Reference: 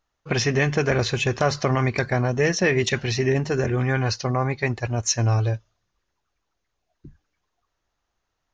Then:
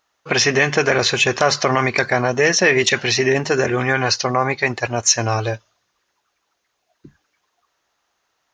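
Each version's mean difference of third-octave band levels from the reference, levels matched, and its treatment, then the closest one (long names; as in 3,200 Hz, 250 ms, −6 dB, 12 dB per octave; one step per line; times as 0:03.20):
4.0 dB: high-pass filter 570 Hz 6 dB per octave
in parallel at +1.5 dB: brickwall limiter −17.5 dBFS, peak gain reduction 8.5 dB
on the sum: level +4 dB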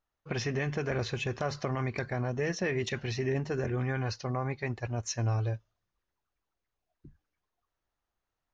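1.0 dB: high-shelf EQ 4,600 Hz −7.5 dB
brickwall limiter −13 dBFS, peak gain reduction 4 dB
level −8.5 dB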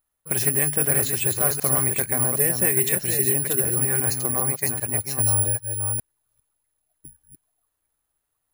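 10.5 dB: delay that plays each chunk backwards 400 ms, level −5 dB
bad sample-rate conversion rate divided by 4×, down filtered, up zero stuff
level −7 dB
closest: second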